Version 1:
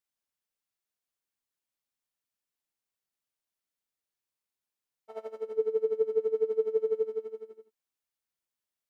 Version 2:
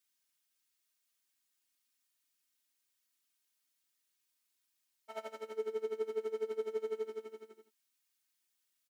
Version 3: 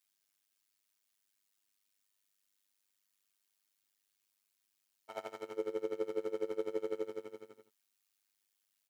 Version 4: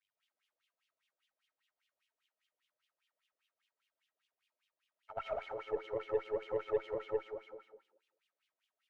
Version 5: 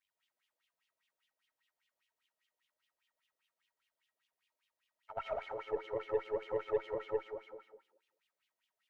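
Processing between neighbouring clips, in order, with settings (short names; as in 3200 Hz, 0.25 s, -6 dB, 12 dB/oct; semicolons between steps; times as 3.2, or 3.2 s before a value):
HPF 320 Hz 6 dB/oct; bell 620 Hz -11.5 dB 2.1 oct; comb 3.2 ms, depth 100%; gain +6.5 dB
AM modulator 100 Hz, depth 80%; gain +4 dB
digital reverb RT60 0.8 s, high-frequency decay 0.55×, pre-delay 60 ms, DRR -6 dB; wah 5 Hz 480–3200 Hz, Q 5.2; added harmonics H 4 -22 dB, 8 -36 dB, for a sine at -28.5 dBFS; gain +6 dB
small resonant body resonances 940/1900 Hz, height 7 dB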